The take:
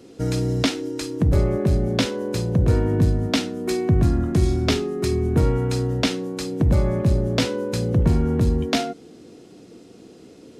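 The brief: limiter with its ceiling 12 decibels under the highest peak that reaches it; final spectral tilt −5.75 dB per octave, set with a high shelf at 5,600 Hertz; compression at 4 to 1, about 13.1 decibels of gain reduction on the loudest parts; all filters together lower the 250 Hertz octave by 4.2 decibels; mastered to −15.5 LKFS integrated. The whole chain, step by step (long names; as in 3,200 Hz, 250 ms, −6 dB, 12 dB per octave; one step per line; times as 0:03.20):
parametric band 250 Hz −6 dB
high-shelf EQ 5,600 Hz +5.5 dB
downward compressor 4 to 1, threshold −31 dBFS
level +20.5 dB
brickwall limiter −6.5 dBFS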